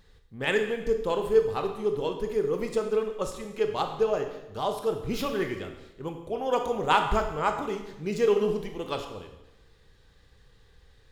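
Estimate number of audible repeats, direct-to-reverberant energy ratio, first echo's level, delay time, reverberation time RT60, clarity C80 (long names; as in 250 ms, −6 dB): no echo audible, 5.0 dB, no echo audible, no echo audible, 0.95 s, 9.5 dB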